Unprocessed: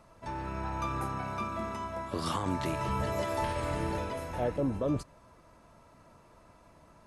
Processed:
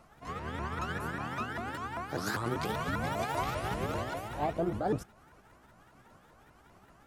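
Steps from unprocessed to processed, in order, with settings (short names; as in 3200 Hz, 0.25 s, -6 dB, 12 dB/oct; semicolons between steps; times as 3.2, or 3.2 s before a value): repeated pitch sweeps +7 st, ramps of 0.197 s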